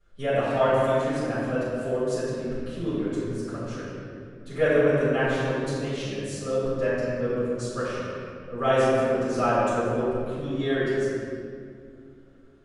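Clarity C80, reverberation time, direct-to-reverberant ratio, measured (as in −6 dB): −2.0 dB, 2.4 s, −15.0 dB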